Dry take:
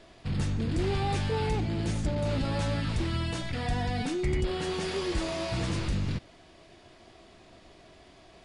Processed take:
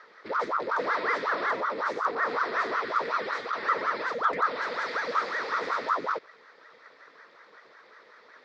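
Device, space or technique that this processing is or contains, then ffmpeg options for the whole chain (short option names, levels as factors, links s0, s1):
voice changer toy: -af "aeval=exprs='val(0)*sin(2*PI*700*n/s+700*0.85/5.4*sin(2*PI*5.4*n/s))':c=same,highpass=460,equalizer=f=460:t=q:w=4:g=6,equalizer=f=780:t=q:w=4:g=-7,equalizer=f=1300:t=q:w=4:g=5,equalizer=f=1900:t=q:w=4:g=9,equalizer=f=2900:t=q:w=4:g=-10,lowpass=f=4900:w=0.5412,lowpass=f=4900:w=1.3066,volume=1.33"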